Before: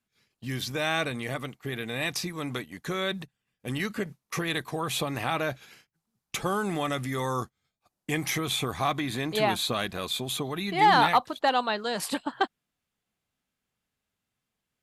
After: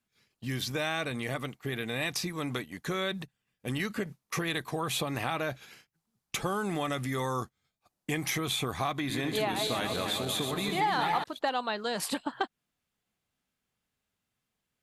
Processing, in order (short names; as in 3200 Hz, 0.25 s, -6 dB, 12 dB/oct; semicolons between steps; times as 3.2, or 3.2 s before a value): 8.95–11.24 regenerating reverse delay 0.145 s, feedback 71%, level -6 dB; compressor 3:1, threshold -28 dBFS, peak gain reduction 10.5 dB